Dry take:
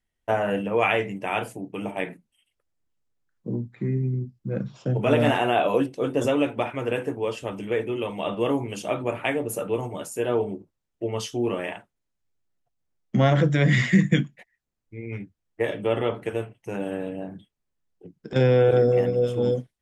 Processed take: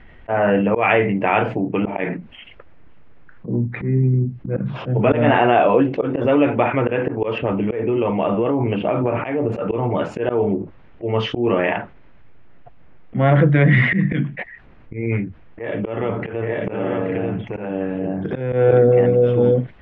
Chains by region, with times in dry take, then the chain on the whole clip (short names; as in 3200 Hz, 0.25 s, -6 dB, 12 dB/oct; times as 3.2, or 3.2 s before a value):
7.38–9.52 LPF 3100 Hz 24 dB/oct + bell 1800 Hz -5 dB 1 oct + compressor 12:1, threshold -26 dBFS
15.2–18.53 compressor 2.5:1, threshold -39 dBFS + tapped delay 0.829/0.892 s -7.5/-3 dB
whole clip: LPF 2500 Hz 24 dB/oct; auto swell 0.178 s; fast leveller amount 50%; gain +5 dB